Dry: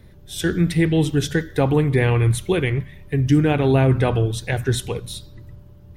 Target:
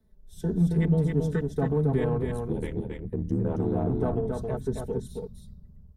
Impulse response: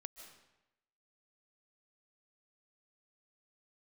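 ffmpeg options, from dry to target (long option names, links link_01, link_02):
-filter_complex "[0:a]afwtdn=0.0562,equalizer=frequency=2500:width_type=o:width=1.2:gain=-12,aecho=1:1:4.6:0.81,acrossover=split=210|3000[link_01][link_02][link_03];[link_02]acompressor=threshold=-25dB:ratio=2[link_04];[link_01][link_04][link_03]amix=inputs=3:normalize=0,asplit=2[link_05][link_06];[link_06]asoftclip=type=tanh:threshold=-23.5dB,volume=-11.5dB[link_07];[link_05][link_07]amix=inputs=2:normalize=0,asettb=1/sr,asplit=3[link_08][link_09][link_10];[link_08]atrim=end=2.204[link_11];[link_09]atrim=start=2.2:end=3.91,asetpts=PTS-STARTPTS,afade=type=in:duration=0.004:curve=qsin,afade=type=out:start_time=1.706:duration=0.004:curve=qsin,aeval=exprs='val(0)*sin(2*PI*39*n/s)':channel_layout=same[link_12];[link_10]atrim=start=3.906[link_13];[link_11][link_12]acrossfade=duration=0.004:curve1=hsin:curve2=qsin[link_14];[link_14][link_13]acrossfade=duration=0.004:curve1=qsin:curve2=hsin,asplit=2[link_15][link_16];[link_16]aecho=0:1:272:0.631[link_17];[link_15][link_17]amix=inputs=2:normalize=0,volume=-6.5dB"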